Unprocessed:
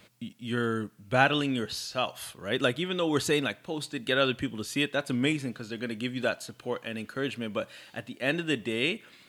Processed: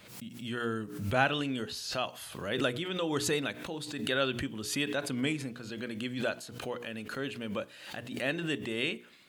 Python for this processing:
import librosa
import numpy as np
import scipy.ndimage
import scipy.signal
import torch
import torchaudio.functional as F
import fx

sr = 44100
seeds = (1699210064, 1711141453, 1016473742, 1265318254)

y = fx.hum_notches(x, sr, base_hz=60, count=8)
y = fx.pre_swell(y, sr, db_per_s=66.0)
y = F.gain(torch.from_numpy(y), -4.5).numpy()